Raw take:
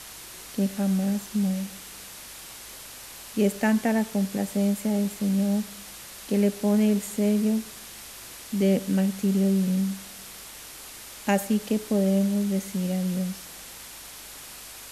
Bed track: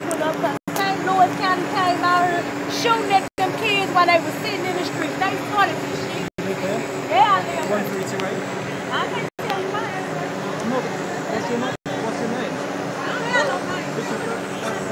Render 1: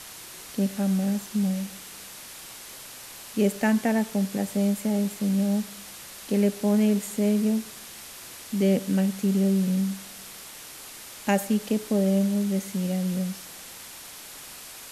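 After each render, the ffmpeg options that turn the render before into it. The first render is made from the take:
-af "bandreject=f=50:t=h:w=4,bandreject=f=100:t=h:w=4"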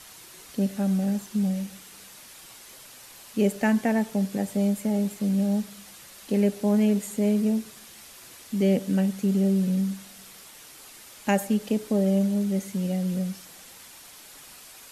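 -af "afftdn=nr=6:nf=-43"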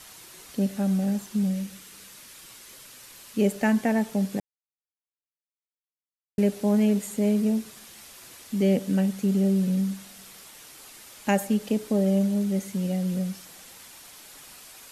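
-filter_complex "[0:a]asettb=1/sr,asplit=3[s0][s1][s2];[s0]atrim=end=1.434[s3];[s1]atrim=start=1.43:end=3.39,asetpts=PTS-STARTPTS,afade=t=in:d=0.004:c=qsin,afade=t=out:st=1.956:d=0.004:c=qsin,equalizer=f=750:w=2.4:g=-6[s4];[s2]atrim=start=3.386[s5];[s3][s4]acrossfade=d=0.004:c1=hsin:c2=qsin[s6];[s6][s5]acrossfade=d=0.004:c1=qsin:c2=hsin,asplit=3[s7][s8][s9];[s7]atrim=end=4.4,asetpts=PTS-STARTPTS,afade=t=out:st=4.396:d=0.004:c=hsin[s10];[s8]atrim=start=4.4:end=6.38,asetpts=PTS-STARTPTS,volume=0[s11];[s9]atrim=start=6.38,asetpts=PTS-STARTPTS,afade=t=in:d=0.004:c=hsin[s12];[s10][s11][s12]concat=n=3:v=0:a=1"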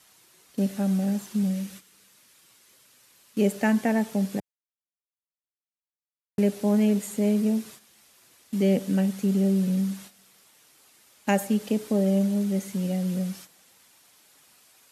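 -af "highpass=82,agate=range=0.282:threshold=0.00708:ratio=16:detection=peak"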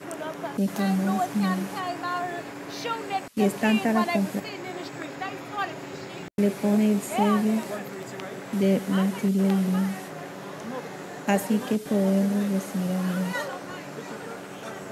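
-filter_complex "[1:a]volume=0.251[s0];[0:a][s0]amix=inputs=2:normalize=0"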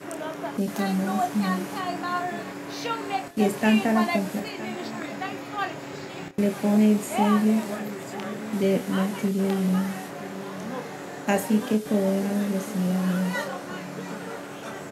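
-filter_complex "[0:a]asplit=2[s0][s1];[s1]adelay=28,volume=0.447[s2];[s0][s2]amix=inputs=2:normalize=0,aecho=1:1:964:0.15"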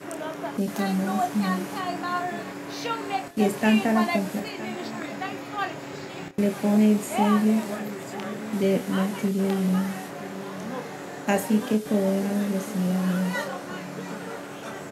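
-af anull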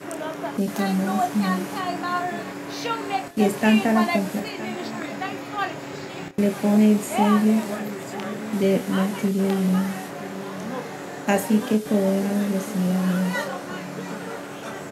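-af "volume=1.33"

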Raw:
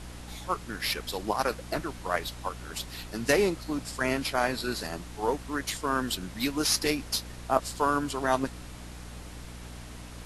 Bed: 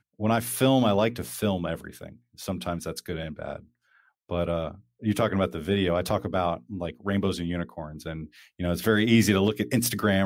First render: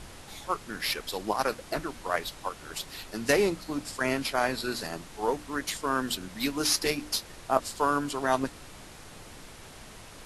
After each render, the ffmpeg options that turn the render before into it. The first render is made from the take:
-af "bandreject=f=60:t=h:w=6,bandreject=f=120:t=h:w=6,bandreject=f=180:t=h:w=6,bandreject=f=240:t=h:w=6,bandreject=f=300:t=h:w=6"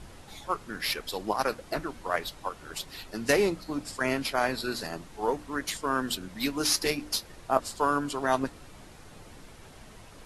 -af "afftdn=nr=6:nf=-48"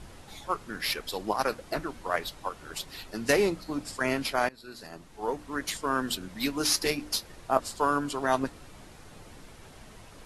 -filter_complex "[0:a]asplit=2[s0][s1];[s0]atrim=end=4.49,asetpts=PTS-STARTPTS,afade=t=out:st=4.486:d=0.004:c=hsin:silence=0.0668344[s2];[s1]atrim=start=4.49,asetpts=PTS-STARTPTS,afade=t=in:d=1.16:silence=0.0668344[s3];[s2][s3]concat=n=2:v=0:a=1"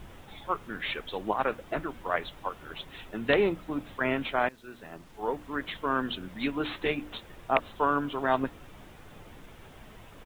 -af "aresample=8000,aeval=exprs='(mod(3.55*val(0)+1,2)-1)/3.55':c=same,aresample=44100,acrusher=bits=9:mix=0:aa=0.000001"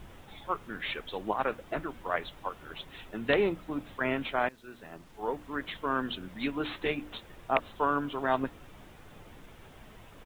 -af "volume=0.794"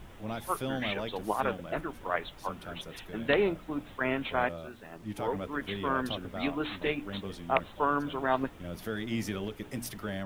-filter_complex "[1:a]volume=0.211[s0];[0:a][s0]amix=inputs=2:normalize=0"

